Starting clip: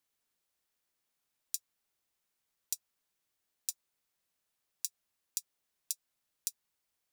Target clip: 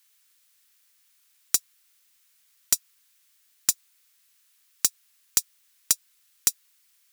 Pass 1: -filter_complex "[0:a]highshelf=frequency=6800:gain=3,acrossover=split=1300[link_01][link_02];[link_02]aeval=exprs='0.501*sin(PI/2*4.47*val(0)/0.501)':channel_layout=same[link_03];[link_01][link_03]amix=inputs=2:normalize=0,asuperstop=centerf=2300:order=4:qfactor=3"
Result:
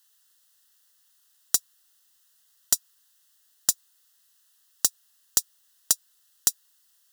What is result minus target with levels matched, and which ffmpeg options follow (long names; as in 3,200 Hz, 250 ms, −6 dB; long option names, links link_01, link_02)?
2,000 Hz band −2.5 dB
-filter_complex "[0:a]highshelf=frequency=6800:gain=3,acrossover=split=1300[link_01][link_02];[link_02]aeval=exprs='0.501*sin(PI/2*4.47*val(0)/0.501)':channel_layout=same[link_03];[link_01][link_03]amix=inputs=2:normalize=0,asuperstop=centerf=690:order=4:qfactor=3"